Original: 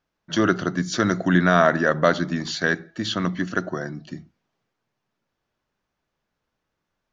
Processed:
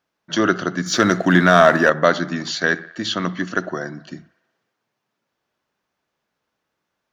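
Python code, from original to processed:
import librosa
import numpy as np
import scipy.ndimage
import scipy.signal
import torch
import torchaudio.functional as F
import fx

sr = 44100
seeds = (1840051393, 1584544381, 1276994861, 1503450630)

p1 = fx.highpass(x, sr, hz=230.0, slope=6)
p2 = p1 + fx.echo_wet_bandpass(p1, sr, ms=61, feedback_pct=70, hz=1400.0, wet_db=-20, dry=0)
p3 = fx.leveller(p2, sr, passes=1, at=(0.86, 1.9))
y = F.gain(torch.from_numpy(p3), 3.5).numpy()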